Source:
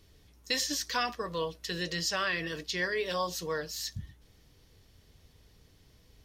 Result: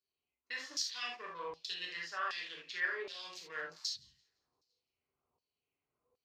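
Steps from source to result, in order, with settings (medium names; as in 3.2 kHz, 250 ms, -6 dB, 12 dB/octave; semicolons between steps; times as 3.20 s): local Wiener filter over 25 samples; spectral noise reduction 16 dB; reverse; compression 6:1, threshold -42 dBFS, peak gain reduction 15.5 dB; reverse; feedback echo behind a high-pass 171 ms, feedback 50%, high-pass 2.7 kHz, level -21 dB; gated-style reverb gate 100 ms flat, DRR -2.5 dB; LFO band-pass saw down 1.3 Hz 980–5100 Hz; trim +9.5 dB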